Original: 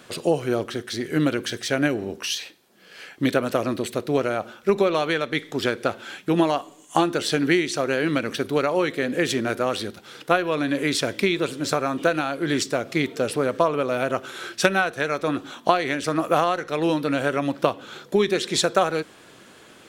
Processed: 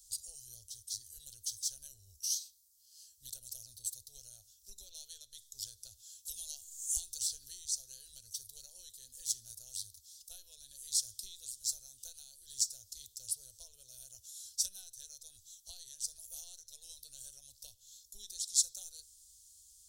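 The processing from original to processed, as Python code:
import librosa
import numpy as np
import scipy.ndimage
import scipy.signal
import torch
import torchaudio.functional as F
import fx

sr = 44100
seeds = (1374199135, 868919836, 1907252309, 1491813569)

y = fx.band_squash(x, sr, depth_pct=100, at=(6.25, 7.65))
y = fx.peak_eq(y, sr, hz=1100.0, db=-8.0, octaves=0.77, at=(12.23, 12.63))
y = scipy.signal.sosfilt(scipy.signal.cheby2(4, 50, [150.0, 2400.0], 'bandstop', fs=sr, output='sos'), y)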